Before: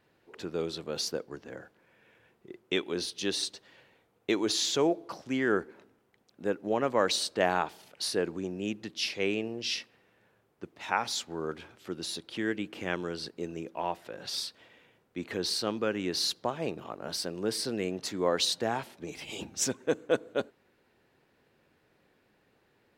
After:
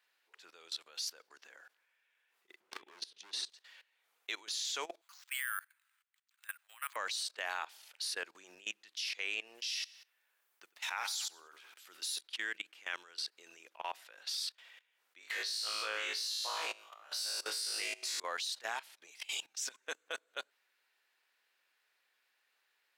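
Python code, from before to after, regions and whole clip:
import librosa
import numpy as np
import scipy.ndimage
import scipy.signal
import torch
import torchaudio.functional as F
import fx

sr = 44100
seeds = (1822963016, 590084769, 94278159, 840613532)

y = fx.chain(x, sr, fx.tilt_eq(slope=-4.5),
    fx.overload_stage(gain_db=27.5),
    fx.band_squash(depth_pct=40), at=(2.6, 3.5))
y = fx.chain(y, sr, fx.highpass(hz=1200.0, slope=24),
    fx.resample_bad(factor=4, down='filtered', up='hold'), at=(5.01, 6.96))
y = fx.chain(y, sr, fx.high_shelf(hz=10000.0, db=11.5),
    fx.echo_feedback(ms=91, feedback_pct=34, wet_db=-13), at=(9.55, 12.21))
y = fx.chain(y, sr, fx.highpass(hz=370.0, slope=12),
    fx.room_flutter(wall_m=3.2, rt60_s=0.71), at=(15.19, 18.2))
y = scipy.signal.sosfilt(scipy.signal.butter(2, 1300.0, 'highpass', fs=sr, output='sos'), y)
y = fx.high_shelf(y, sr, hz=2300.0, db=5.0)
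y = fx.level_steps(y, sr, step_db=20)
y = F.gain(torch.from_numpy(y), 2.0).numpy()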